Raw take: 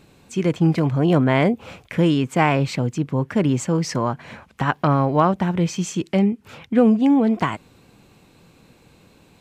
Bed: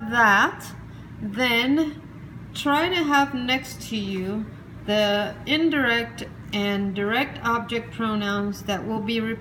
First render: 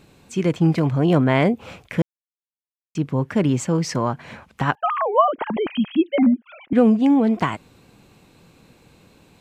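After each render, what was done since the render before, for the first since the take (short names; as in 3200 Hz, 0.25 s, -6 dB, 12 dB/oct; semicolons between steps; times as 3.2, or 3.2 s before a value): 2.02–2.95 mute; 4.75–6.73 sine-wave speech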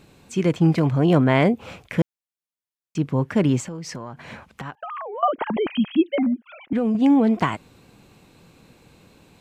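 3.6–5.23 compressor 8:1, threshold -30 dBFS; 6.13–6.95 compressor, threshold -18 dBFS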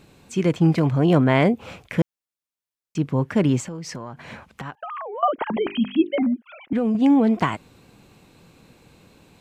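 5.43–6.22 notches 50/100/150/200/250/300/350/400 Hz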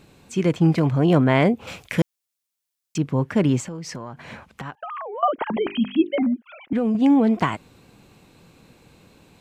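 1.67–2.98 high shelf 2600 Hz +10 dB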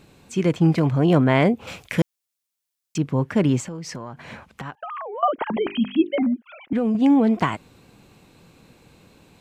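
nothing audible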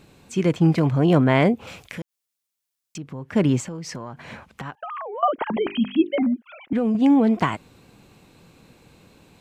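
1.65–3.33 compressor 2.5:1, threshold -36 dBFS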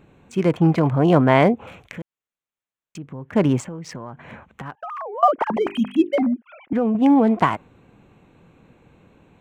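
Wiener smoothing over 9 samples; dynamic EQ 880 Hz, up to +6 dB, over -34 dBFS, Q 0.77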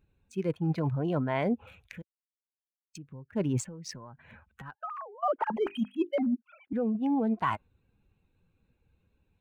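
per-bin expansion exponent 1.5; reverse; compressor 16:1, threshold -25 dBFS, peak gain reduction 15.5 dB; reverse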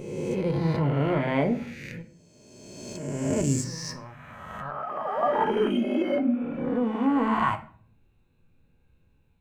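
spectral swells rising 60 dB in 1.76 s; shoebox room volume 50 m³, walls mixed, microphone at 0.3 m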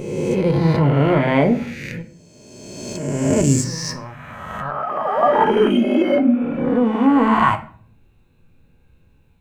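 gain +9 dB; limiter -2 dBFS, peak gain reduction 1 dB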